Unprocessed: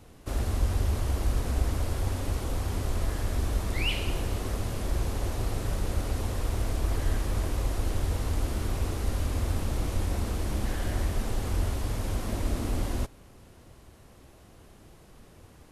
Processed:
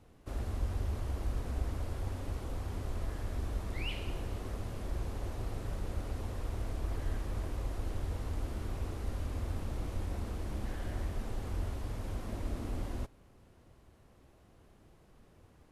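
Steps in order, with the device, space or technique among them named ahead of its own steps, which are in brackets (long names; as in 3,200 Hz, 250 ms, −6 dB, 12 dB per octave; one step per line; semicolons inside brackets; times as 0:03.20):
behind a face mask (high-shelf EQ 3,500 Hz −7 dB)
level −8 dB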